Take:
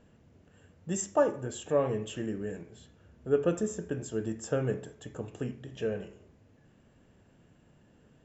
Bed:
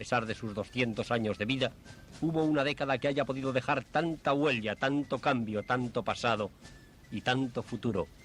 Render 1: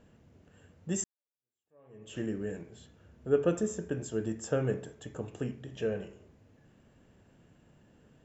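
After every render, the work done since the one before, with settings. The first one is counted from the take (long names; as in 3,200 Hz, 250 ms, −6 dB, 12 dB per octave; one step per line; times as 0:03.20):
0:01.04–0:02.18: fade in exponential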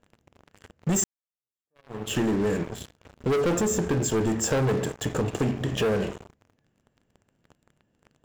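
leveller curve on the samples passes 5
downward compressor, threshold −22 dBFS, peak gain reduction 5.5 dB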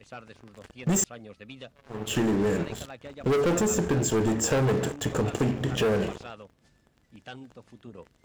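mix in bed −13.5 dB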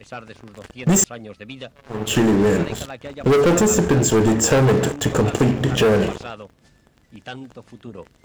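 level +8.5 dB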